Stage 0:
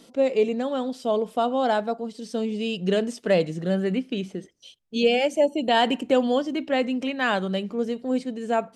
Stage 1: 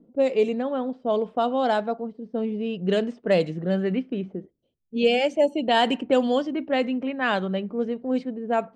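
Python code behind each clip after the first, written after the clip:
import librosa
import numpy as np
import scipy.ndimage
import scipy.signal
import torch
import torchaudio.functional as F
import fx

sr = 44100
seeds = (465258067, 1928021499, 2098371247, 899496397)

y = fx.env_lowpass(x, sr, base_hz=320.0, full_db=-16.0)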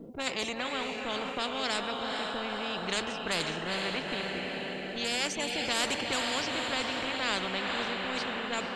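y = fx.echo_diffused(x, sr, ms=465, feedback_pct=52, wet_db=-9.5)
y = fx.spectral_comp(y, sr, ratio=4.0)
y = F.gain(torch.from_numpy(y), -7.0).numpy()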